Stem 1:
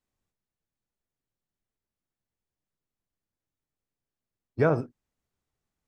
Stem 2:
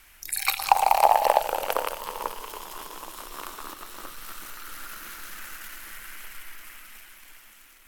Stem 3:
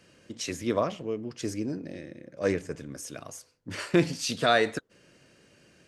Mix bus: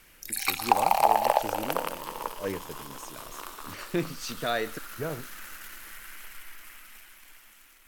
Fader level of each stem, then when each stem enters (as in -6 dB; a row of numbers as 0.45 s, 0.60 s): -11.0 dB, -3.0 dB, -6.5 dB; 0.40 s, 0.00 s, 0.00 s